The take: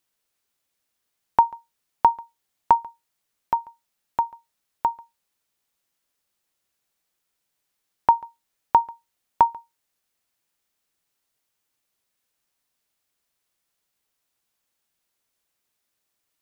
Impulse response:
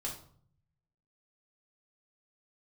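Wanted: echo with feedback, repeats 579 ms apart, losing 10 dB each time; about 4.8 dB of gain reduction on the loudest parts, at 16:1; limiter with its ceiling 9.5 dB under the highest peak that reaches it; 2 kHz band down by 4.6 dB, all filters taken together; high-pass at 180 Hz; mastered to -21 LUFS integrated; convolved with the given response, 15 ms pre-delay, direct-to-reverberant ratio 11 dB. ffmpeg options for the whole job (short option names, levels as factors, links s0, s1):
-filter_complex "[0:a]highpass=180,equalizer=f=2000:t=o:g=-6.5,acompressor=threshold=0.158:ratio=16,alimiter=limit=0.188:level=0:latency=1,aecho=1:1:579|1158|1737|2316:0.316|0.101|0.0324|0.0104,asplit=2[s0][s1];[1:a]atrim=start_sample=2205,adelay=15[s2];[s1][s2]afir=irnorm=-1:irlink=0,volume=0.266[s3];[s0][s3]amix=inputs=2:normalize=0,volume=4.73"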